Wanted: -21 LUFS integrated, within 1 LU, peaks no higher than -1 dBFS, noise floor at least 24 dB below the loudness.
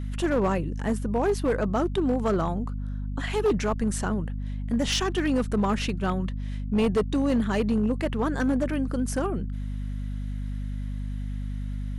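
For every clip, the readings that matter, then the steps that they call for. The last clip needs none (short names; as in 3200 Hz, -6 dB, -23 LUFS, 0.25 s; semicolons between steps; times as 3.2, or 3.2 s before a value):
clipped 1.7%; flat tops at -18.0 dBFS; hum 50 Hz; harmonics up to 250 Hz; hum level -29 dBFS; loudness -27.5 LUFS; peak -18.0 dBFS; loudness target -21.0 LUFS
-> clip repair -18 dBFS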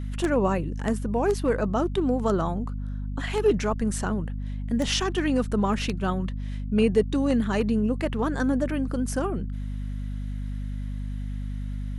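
clipped 0.0%; hum 50 Hz; harmonics up to 250 Hz; hum level -28 dBFS
-> notches 50/100/150/200/250 Hz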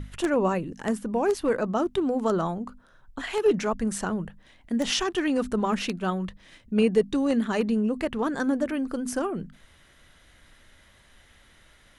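hum none; loudness -26.5 LUFS; peak -10.0 dBFS; loudness target -21.0 LUFS
-> gain +5.5 dB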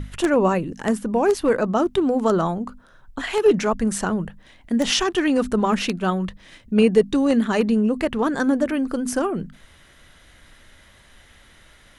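loudness -21.0 LUFS; peak -4.5 dBFS; noise floor -52 dBFS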